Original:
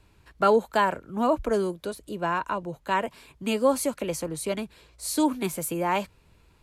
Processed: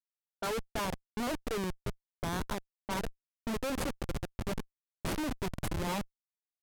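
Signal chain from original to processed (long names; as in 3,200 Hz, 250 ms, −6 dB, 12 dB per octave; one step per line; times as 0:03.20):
comparator with hysteresis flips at −25 dBFS
low-pass that shuts in the quiet parts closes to 500 Hz, open at −29 dBFS
level −5.5 dB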